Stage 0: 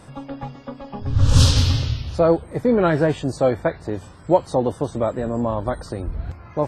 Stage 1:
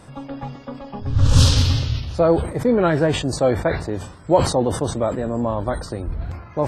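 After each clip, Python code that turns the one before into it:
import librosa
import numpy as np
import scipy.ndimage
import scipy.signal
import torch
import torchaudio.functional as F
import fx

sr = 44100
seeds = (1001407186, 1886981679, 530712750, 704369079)

y = fx.sustainer(x, sr, db_per_s=88.0)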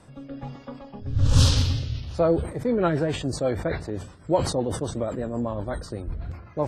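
y = fx.rotary_switch(x, sr, hz=1.2, then_hz=8.0, switch_at_s=2.03)
y = F.gain(torch.from_numpy(y), -4.0).numpy()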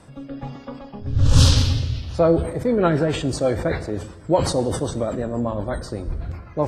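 y = fx.rev_plate(x, sr, seeds[0], rt60_s=1.3, hf_ratio=0.8, predelay_ms=0, drr_db=12.5)
y = F.gain(torch.from_numpy(y), 4.0).numpy()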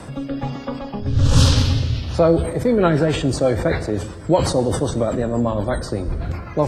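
y = fx.band_squash(x, sr, depth_pct=40)
y = F.gain(torch.from_numpy(y), 3.0).numpy()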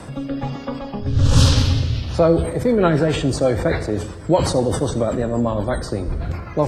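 y = x + 10.0 ** (-17.0 / 20.0) * np.pad(x, (int(80 * sr / 1000.0), 0))[:len(x)]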